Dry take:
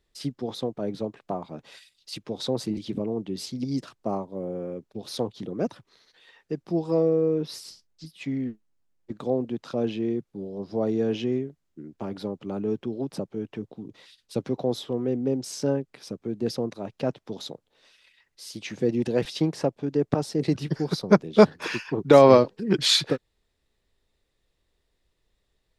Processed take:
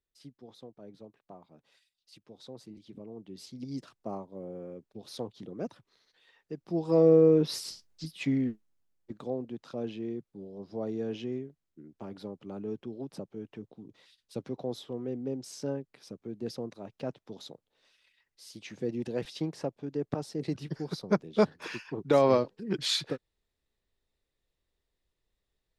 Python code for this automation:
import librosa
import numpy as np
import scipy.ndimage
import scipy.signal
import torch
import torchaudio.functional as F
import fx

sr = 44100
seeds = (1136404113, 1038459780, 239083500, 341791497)

y = fx.gain(x, sr, db=fx.line((2.79, -19.0), (3.77, -9.0), (6.57, -9.0), (7.12, 3.0), (8.18, 3.0), (9.36, -9.0)))